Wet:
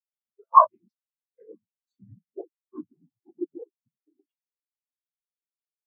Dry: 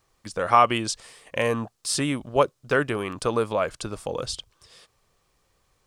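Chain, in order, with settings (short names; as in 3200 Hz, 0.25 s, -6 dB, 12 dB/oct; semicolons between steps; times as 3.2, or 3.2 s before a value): gliding pitch shift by -11 st starting unshifted; noise vocoder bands 16; spectral expander 4:1; gain +4 dB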